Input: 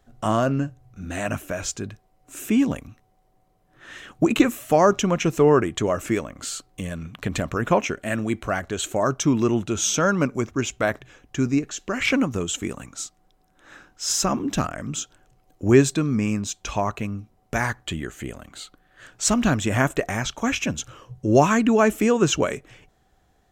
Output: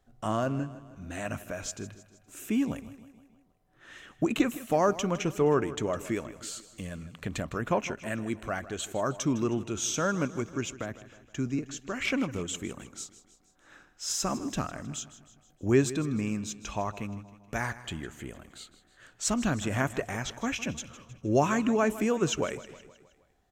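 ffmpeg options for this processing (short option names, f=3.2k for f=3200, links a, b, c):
-filter_complex "[0:a]asettb=1/sr,asplit=3[a][b][c];[a]atrim=end=10.714[d];[b]atrim=start=10.71:end=11.59,asetpts=PTS-STARTPTS,afade=t=in:d=0.004:c=qsin,afade=t=out:st=0.876:d=0.004:c=qsin,acrossover=split=290[e][f];[f]acompressor=threshold=-27dB:ratio=10[g];[e][g]amix=inputs=2:normalize=0[h];[c]atrim=start=11.586[i];[d][h]acrossfade=d=0.004:c1=hsin:c2=qsin[j];[j][i]acrossfade=d=0.004:c1=qsin:c2=hsin,asplit=2[k][l];[l]aecho=0:1:157|314|471|628|785:0.158|0.084|0.0445|0.0236|0.0125[m];[k][m]amix=inputs=2:normalize=0,volume=-8dB"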